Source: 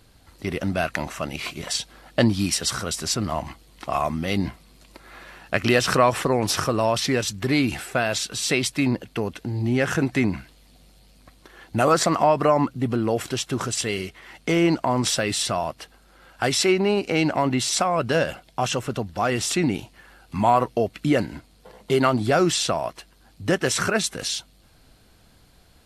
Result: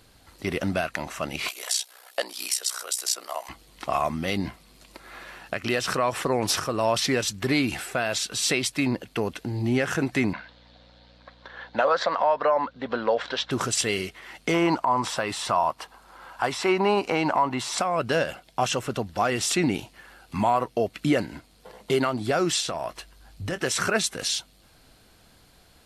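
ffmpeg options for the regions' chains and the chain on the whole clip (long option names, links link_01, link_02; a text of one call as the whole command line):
ffmpeg -i in.wav -filter_complex "[0:a]asettb=1/sr,asplit=3[link_01][link_02][link_03];[link_01]atrim=end=1.484[link_04];[link_02]atrim=start=1.48:end=3.49,asetpts=PTS-STARTPTS,afade=type=in:duration=0.004:curve=qsin,afade=type=out:start_time=2.006:duration=0.004:curve=qsin,highpass=frequency=460:width=0.5412,highpass=frequency=460:width=1.3066,aemphasis=mode=production:type=50fm,aeval=exprs='val(0)*sin(2*PI*31*n/s)':channel_layout=same[link_05];[link_03]atrim=start=3.486[link_06];[link_04][link_05]acrossfade=duration=0.004:curve1=hsin:curve2=qsin[link_07];[link_07][link_06]acrossfade=duration=0.004:curve1=qsin:curve2=hsin,asettb=1/sr,asplit=3[link_08][link_09][link_10];[link_08]atrim=end=10.334[link_11];[link_09]atrim=start=10.33:end=13.51,asetpts=PTS-STARTPTS,afade=type=in:duration=0.004:curve=qsin,afade=type=out:start_time=3.176:duration=0.004:curve=qsin,highpass=310,equalizer=frequency=340:width_type=q:width=4:gain=-10,equalizer=frequency=540:width_type=q:width=4:gain=9,equalizer=frequency=940:width_type=q:width=4:gain=7,equalizer=frequency=1600:width_type=q:width=4:gain=8,equalizer=frequency=2600:width_type=q:width=4:gain=-3,equalizer=frequency=3700:width_type=q:width=4:gain=6,lowpass=frequency=4600:width=0.5412,lowpass=frequency=4600:width=1.3066,aeval=exprs='val(0)+0.00251*(sin(2*PI*60*n/s)+sin(2*PI*2*60*n/s)/2+sin(2*PI*3*60*n/s)/3+sin(2*PI*4*60*n/s)/4+sin(2*PI*5*60*n/s)/5)':channel_layout=same[link_12];[link_10]atrim=start=13.506[link_13];[link_11][link_12]acrossfade=duration=0.004:curve1=hsin:curve2=qsin[link_14];[link_14][link_13]acrossfade=duration=0.004:curve1=qsin:curve2=hsin,asettb=1/sr,asplit=3[link_15][link_16][link_17];[link_15]atrim=end=14.544[link_18];[link_16]atrim=start=14.54:end=17.78,asetpts=PTS-STARTPTS,afade=type=in:duration=0.004:curve=qsin,afade=type=out:start_time=3.236:duration=0.004:curve=qsin,equalizer=frequency=980:width_type=o:width=0.79:gain=13.5,acrossover=split=2700[link_19][link_20];[link_20]acompressor=threshold=-28dB:ratio=4:attack=1:release=60[link_21];[link_19][link_21]amix=inputs=2:normalize=0[link_22];[link_17]atrim=start=17.776[link_23];[link_18][link_22]acrossfade=duration=0.004:curve1=hsin:curve2=qsin[link_24];[link_24][link_23]acrossfade=duration=0.004:curve1=qsin:curve2=hsin,asettb=1/sr,asplit=3[link_25][link_26][link_27];[link_25]atrim=end=22.604[link_28];[link_26]atrim=start=22.6:end=23.58,asetpts=PTS-STARTPTS,afade=type=in:duration=0.004:curve=qsin,afade=type=out:start_time=0.976:duration=0.004:curve=qsin,asubboost=boost=10:cutoff=120,acompressor=threshold=-26dB:ratio=4:attack=3.2:release=140:knee=1:detection=peak,asplit=2[link_29][link_30];[link_30]adelay=23,volume=-13.5dB[link_31];[link_29][link_31]amix=inputs=2:normalize=0,atrim=end_sample=43218[link_32];[link_27]atrim=start=23.576[link_33];[link_28][link_32]acrossfade=duration=0.004:curve1=hsin:curve2=qsin[link_34];[link_34][link_33]acrossfade=duration=0.004:curve1=qsin:curve2=hsin,lowshelf=frequency=240:gain=-5.5,alimiter=limit=-13.5dB:level=0:latency=1:release=482,volume=1.5dB" out.wav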